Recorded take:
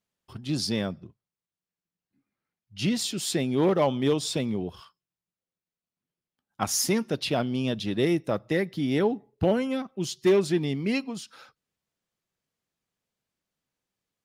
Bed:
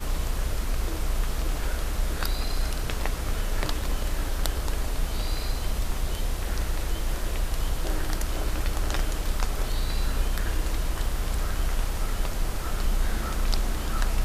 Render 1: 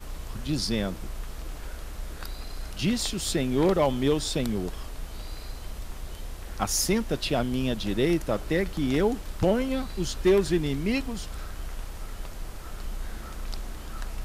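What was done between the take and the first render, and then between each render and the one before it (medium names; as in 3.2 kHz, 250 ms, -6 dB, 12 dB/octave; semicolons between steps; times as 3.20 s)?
add bed -9.5 dB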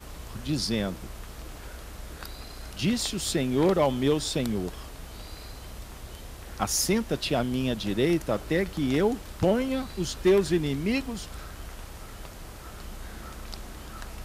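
high-pass 49 Hz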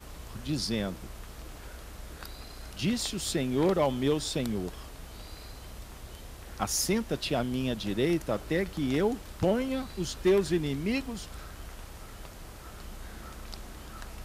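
trim -3 dB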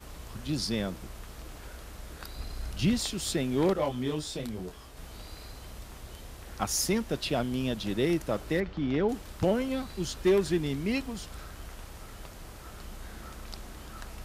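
2.35–2.99 s: bass shelf 140 Hz +9.5 dB; 3.73–4.97 s: detune thickener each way 24 cents; 8.60–9.09 s: distance through air 200 m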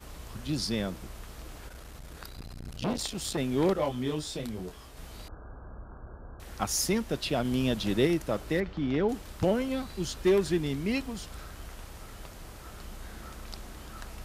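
1.68–3.38 s: transformer saturation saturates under 690 Hz; 5.28–6.40 s: brick-wall FIR low-pass 1.7 kHz; 7.45–8.07 s: gain +3 dB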